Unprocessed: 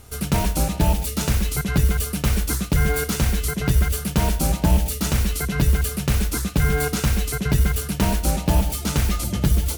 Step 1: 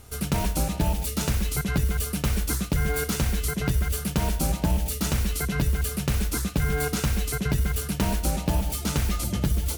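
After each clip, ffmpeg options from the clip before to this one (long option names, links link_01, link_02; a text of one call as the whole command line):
ffmpeg -i in.wav -af "acompressor=threshold=-17dB:ratio=6,volume=-2.5dB" out.wav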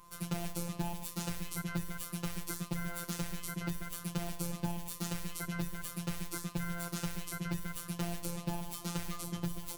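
ffmpeg -i in.wav -af "aeval=exprs='val(0)+0.00501*sin(2*PI*1000*n/s)':channel_layout=same,afftfilt=real='hypot(re,im)*cos(PI*b)':imag='0':win_size=1024:overlap=0.75,volume=-8dB" out.wav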